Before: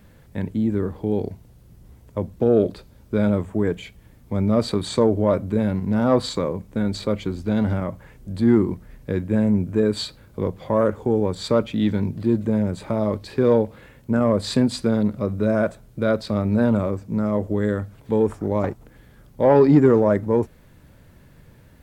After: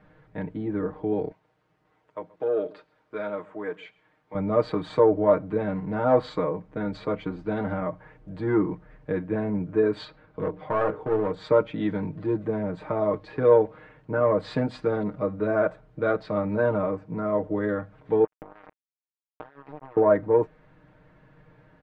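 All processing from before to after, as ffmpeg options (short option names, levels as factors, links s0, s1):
-filter_complex "[0:a]asettb=1/sr,asplit=3[s0][s1][s2];[s0]atrim=end=1.314[s3];[s1]atrim=start=1.31:end=4.35,asetpts=PTS-STARTPTS,afade=t=in:d=0.004:c=qsin,afade=t=out:st=3.036:d=0.004:c=qsin,highpass=f=1000:p=1,aecho=1:1:131:0.075,atrim=end_sample=134064[s4];[s2]atrim=start=4.346[s5];[s3][s4]acrossfade=d=0.004:c1=hsin:c2=qsin[s6];[s6][s5]acrossfade=d=0.004:c1=qsin:c2=hsin,asettb=1/sr,asplit=3[s7][s8][s9];[s7]atrim=end=10.054[s10];[s8]atrim=start=10.05:end=11.34,asetpts=PTS-STARTPTS,afade=t=in:d=0.004:c=qsin,afade=t=out:st=1.286:d=0.004:c=qsin,lowpass=5700,bandreject=f=60:t=h:w=6,bandreject=f=120:t=h:w=6,bandreject=f=180:t=h:w=6,bandreject=f=240:t=h:w=6,bandreject=f=300:t=h:w=6,bandreject=f=360:t=h:w=6,bandreject=f=420:t=h:w=6,bandreject=f=480:t=h:w=6,bandreject=f=540:t=h:w=6,bandreject=f=600:t=h:w=6,aeval=exprs='clip(val(0),-1,0.0708)':c=same[s11];[s9]atrim=start=11.336[s12];[s10][s11]acrossfade=d=0.004:c1=hsin:c2=qsin[s13];[s13][s12]acrossfade=d=0.004:c1=qsin:c2=hsin,asettb=1/sr,asplit=3[s14][s15][s16];[s14]atrim=end=18.244[s17];[s15]atrim=start=18.24:end=19.97,asetpts=PTS-STARTPTS,afade=t=in:d=0.004:c=qsin,afade=t=out:st=1.726:d=0.004:c=qsin,acompressor=threshold=0.0447:ratio=8:attack=3.2:release=140:knee=1:detection=peak,equalizer=f=800:w=0.63:g=-4.5,acrusher=bits=3:mix=0:aa=0.5[s18];[s16]atrim=start=19.966[s19];[s17][s18]acrossfade=d=0.004:c1=hsin:c2=qsin[s20];[s20][s19]acrossfade=d=0.004:c1=qsin:c2=hsin,lowpass=1700,lowshelf=f=330:g=-11,aecho=1:1:6.5:0.87"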